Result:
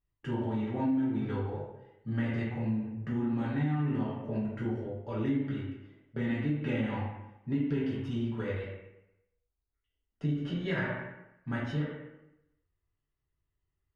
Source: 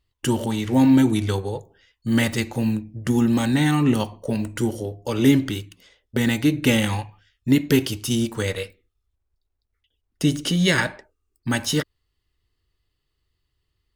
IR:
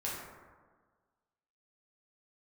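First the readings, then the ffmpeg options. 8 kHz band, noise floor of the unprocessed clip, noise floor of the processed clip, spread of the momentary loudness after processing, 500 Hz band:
below −35 dB, −77 dBFS, −84 dBFS, 12 LU, −10.5 dB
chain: -filter_complex "[0:a]lowpass=1800[link_01];[1:a]atrim=start_sample=2205,asetrate=74970,aresample=44100[link_02];[link_01][link_02]afir=irnorm=-1:irlink=0,acompressor=threshold=-19dB:ratio=6,volume=-7.5dB"

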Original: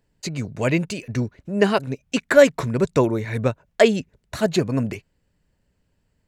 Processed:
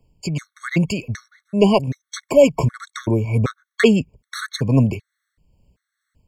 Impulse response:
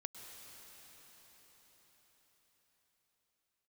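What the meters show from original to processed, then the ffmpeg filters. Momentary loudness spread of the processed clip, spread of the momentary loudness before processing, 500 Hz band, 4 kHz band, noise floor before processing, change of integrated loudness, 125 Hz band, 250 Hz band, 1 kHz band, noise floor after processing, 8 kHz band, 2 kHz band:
16 LU, 13 LU, 0.0 dB, +1.0 dB, −70 dBFS, +2.0 dB, +5.5 dB, +3.0 dB, 0.0 dB, −82 dBFS, 0.0 dB, −2.0 dB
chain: -filter_complex "[0:a]acrossover=split=150|1000[link_01][link_02][link_03];[link_01]acontrast=67[link_04];[link_04][link_02][link_03]amix=inputs=3:normalize=0,tremolo=f=2.3:d=0.37,acontrast=51,afftfilt=real='re*gt(sin(2*PI*1.3*pts/sr)*(1-2*mod(floor(b*sr/1024/1100),2)),0)':imag='im*gt(sin(2*PI*1.3*pts/sr)*(1-2*mod(floor(b*sr/1024/1100),2)),0)':win_size=1024:overlap=0.75"

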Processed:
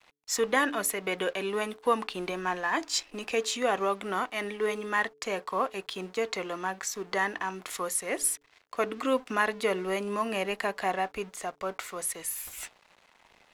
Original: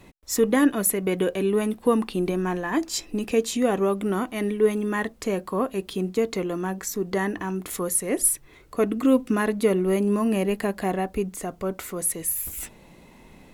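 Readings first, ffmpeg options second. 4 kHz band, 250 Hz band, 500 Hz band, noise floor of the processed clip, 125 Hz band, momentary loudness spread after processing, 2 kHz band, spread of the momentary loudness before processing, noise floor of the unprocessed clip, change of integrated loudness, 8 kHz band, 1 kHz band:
+1.5 dB, −13.0 dB, −6.5 dB, −64 dBFS, −14.5 dB, 8 LU, +2.0 dB, 8 LU, −51 dBFS, −6.0 dB, −5.5 dB, +1.0 dB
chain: -filter_complex "[0:a]aeval=exprs='sgn(val(0))*max(abs(val(0))-0.00355,0)':channel_layout=same,acrossover=split=590 7300:gain=0.141 1 0.224[link_01][link_02][link_03];[link_01][link_02][link_03]amix=inputs=3:normalize=0,bandreject=frequency=144.8:width_type=h:width=4,bandreject=frequency=289.6:width_type=h:width=4,bandreject=frequency=434.4:width_type=h:width=4,volume=2.5dB"

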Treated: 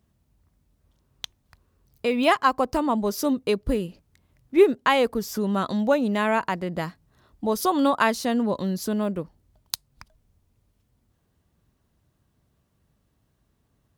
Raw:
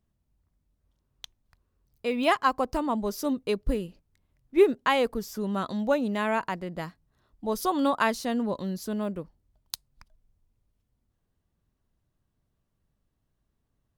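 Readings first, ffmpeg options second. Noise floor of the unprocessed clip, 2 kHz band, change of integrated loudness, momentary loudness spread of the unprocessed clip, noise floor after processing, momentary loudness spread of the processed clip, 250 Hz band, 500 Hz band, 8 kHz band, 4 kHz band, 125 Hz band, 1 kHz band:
−78 dBFS, +4.0 dB, +3.5 dB, 16 LU, −70 dBFS, 14 LU, +4.5 dB, +4.0 dB, +5.5 dB, +4.5 dB, +5.0 dB, +4.0 dB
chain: -filter_complex "[0:a]highpass=52,asplit=2[link_01][link_02];[link_02]acompressor=threshold=-38dB:ratio=6,volume=3dB[link_03];[link_01][link_03]amix=inputs=2:normalize=0,volume=2dB"

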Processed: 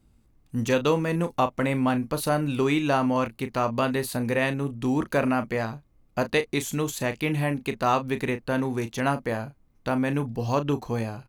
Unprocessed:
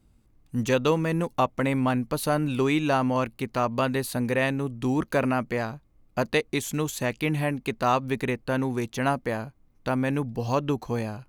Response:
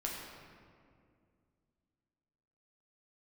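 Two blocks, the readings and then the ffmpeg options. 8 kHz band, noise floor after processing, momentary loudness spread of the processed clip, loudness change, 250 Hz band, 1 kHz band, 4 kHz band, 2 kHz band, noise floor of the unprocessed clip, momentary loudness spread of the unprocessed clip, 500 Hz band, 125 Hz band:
+0.5 dB, −62 dBFS, 7 LU, +0.5 dB, +0.5 dB, +0.5 dB, +0.5 dB, +0.5 dB, −61 dBFS, 7 LU, +0.5 dB, 0.0 dB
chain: -filter_complex "[0:a]asplit=2[link_01][link_02];[link_02]adelay=35,volume=-11dB[link_03];[link_01][link_03]amix=inputs=2:normalize=0"

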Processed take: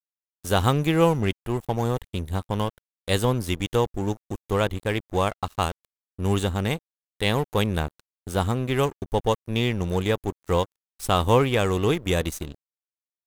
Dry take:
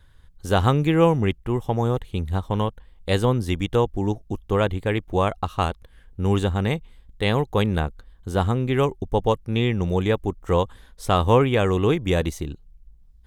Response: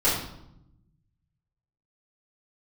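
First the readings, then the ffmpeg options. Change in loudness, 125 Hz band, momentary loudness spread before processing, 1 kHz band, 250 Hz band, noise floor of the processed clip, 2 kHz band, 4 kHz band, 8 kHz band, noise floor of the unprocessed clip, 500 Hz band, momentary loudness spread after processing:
−2.0 dB, −3.0 dB, 10 LU, −1.5 dB, −2.5 dB, below −85 dBFS, −0.5 dB, +1.5 dB, +5.5 dB, −52 dBFS, −2.5 dB, 11 LU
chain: -af "crystalizer=i=2:c=0,aeval=exprs='sgn(val(0))*max(abs(val(0))-0.0168,0)':channel_layout=same,volume=-1.5dB"

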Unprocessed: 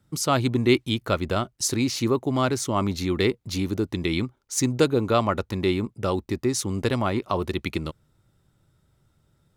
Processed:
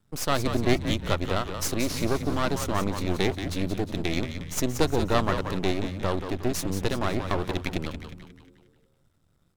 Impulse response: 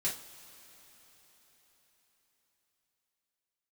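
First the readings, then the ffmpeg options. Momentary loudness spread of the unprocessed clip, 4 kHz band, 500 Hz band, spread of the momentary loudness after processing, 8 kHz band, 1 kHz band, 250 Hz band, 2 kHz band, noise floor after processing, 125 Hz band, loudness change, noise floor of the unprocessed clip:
6 LU, −2.5 dB, −3.5 dB, 6 LU, −4.5 dB, −2.0 dB, −3.5 dB, −1.0 dB, −67 dBFS, −2.5 dB, −3.0 dB, −67 dBFS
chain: -filter_complex "[0:a]aeval=exprs='max(val(0),0)':channel_layout=same,asplit=7[link_01][link_02][link_03][link_04][link_05][link_06][link_07];[link_02]adelay=179,afreqshift=-90,volume=-8dB[link_08];[link_03]adelay=358,afreqshift=-180,volume=-14.4dB[link_09];[link_04]adelay=537,afreqshift=-270,volume=-20.8dB[link_10];[link_05]adelay=716,afreqshift=-360,volume=-27.1dB[link_11];[link_06]adelay=895,afreqshift=-450,volume=-33.5dB[link_12];[link_07]adelay=1074,afreqshift=-540,volume=-39.9dB[link_13];[link_01][link_08][link_09][link_10][link_11][link_12][link_13]amix=inputs=7:normalize=0"

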